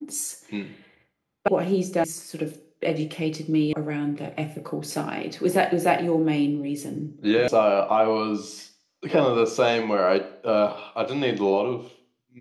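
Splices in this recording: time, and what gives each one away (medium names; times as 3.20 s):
1.48 s: sound stops dead
2.04 s: sound stops dead
3.73 s: sound stops dead
7.48 s: sound stops dead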